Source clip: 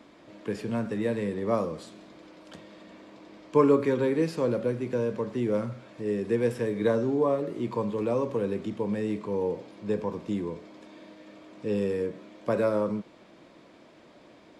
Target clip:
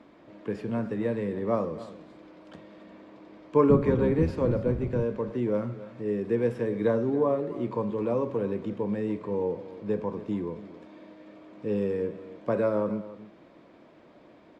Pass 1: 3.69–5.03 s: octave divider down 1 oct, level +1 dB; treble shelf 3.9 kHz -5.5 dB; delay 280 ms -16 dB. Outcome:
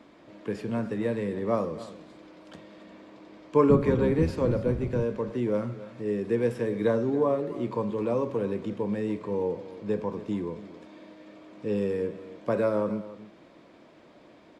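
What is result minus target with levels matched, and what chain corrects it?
8 kHz band +7.0 dB
3.69–5.03 s: octave divider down 1 oct, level +1 dB; treble shelf 3.9 kHz -15 dB; delay 280 ms -16 dB

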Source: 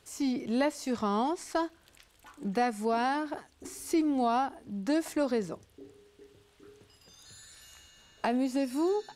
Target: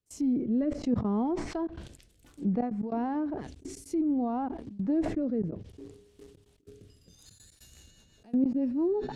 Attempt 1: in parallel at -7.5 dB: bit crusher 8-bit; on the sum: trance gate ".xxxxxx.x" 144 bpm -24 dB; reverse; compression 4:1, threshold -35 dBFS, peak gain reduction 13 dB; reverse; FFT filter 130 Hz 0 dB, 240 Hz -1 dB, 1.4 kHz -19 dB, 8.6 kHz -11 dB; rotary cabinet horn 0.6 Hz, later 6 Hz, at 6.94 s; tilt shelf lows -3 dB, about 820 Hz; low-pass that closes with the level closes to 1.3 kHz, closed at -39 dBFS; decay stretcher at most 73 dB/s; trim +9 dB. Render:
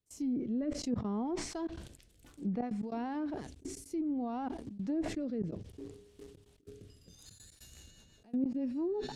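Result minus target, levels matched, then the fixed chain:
compression: peak gain reduction +7 dB
in parallel at -7.5 dB: bit crusher 8-bit; on the sum: trance gate ".xxxxxx.x" 144 bpm -24 dB; reverse; compression 4:1, threshold -26 dBFS, peak gain reduction 6 dB; reverse; FFT filter 130 Hz 0 dB, 240 Hz -1 dB, 1.4 kHz -19 dB, 8.6 kHz -11 dB; rotary cabinet horn 0.6 Hz, later 6 Hz, at 6.94 s; tilt shelf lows -3 dB, about 820 Hz; low-pass that closes with the level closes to 1.3 kHz, closed at -39 dBFS; decay stretcher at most 73 dB/s; trim +9 dB

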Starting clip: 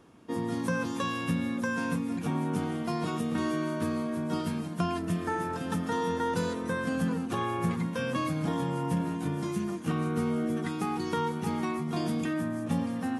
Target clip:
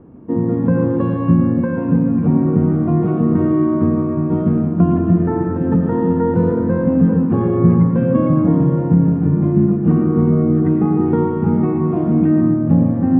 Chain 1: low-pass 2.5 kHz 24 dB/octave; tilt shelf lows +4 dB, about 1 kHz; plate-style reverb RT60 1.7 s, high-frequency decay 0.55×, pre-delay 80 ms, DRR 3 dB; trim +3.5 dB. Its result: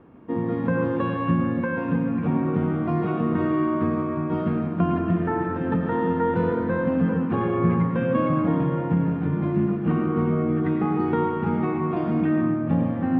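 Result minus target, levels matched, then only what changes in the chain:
1 kHz band +8.0 dB
change: tilt shelf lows +14.5 dB, about 1 kHz

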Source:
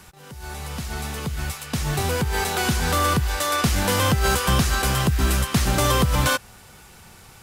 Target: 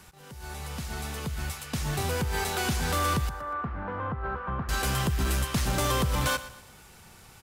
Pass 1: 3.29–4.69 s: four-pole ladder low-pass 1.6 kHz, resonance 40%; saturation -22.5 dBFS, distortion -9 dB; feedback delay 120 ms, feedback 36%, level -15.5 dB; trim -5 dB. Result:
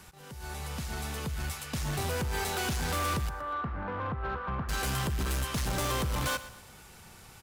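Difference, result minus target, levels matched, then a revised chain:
saturation: distortion +9 dB
3.29–4.69 s: four-pole ladder low-pass 1.6 kHz, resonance 40%; saturation -14 dBFS, distortion -19 dB; feedback delay 120 ms, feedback 36%, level -15.5 dB; trim -5 dB

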